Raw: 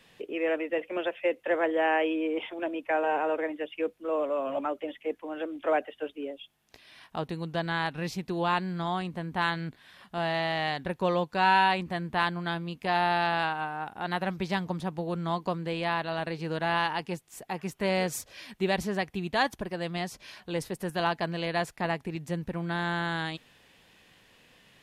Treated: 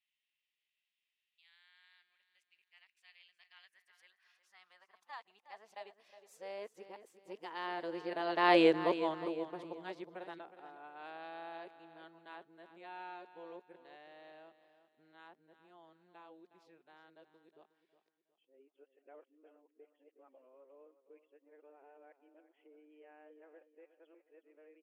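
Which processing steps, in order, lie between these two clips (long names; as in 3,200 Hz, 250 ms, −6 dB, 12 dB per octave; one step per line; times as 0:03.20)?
played backwards from end to start
source passing by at 0:08.60, 17 m/s, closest 1.9 metres
high-shelf EQ 10,000 Hz −11 dB
repeating echo 363 ms, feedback 35%, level −13 dB
high-pass filter sweep 2,500 Hz → 370 Hz, 0:03.35–0:07.01
level +4.5 dB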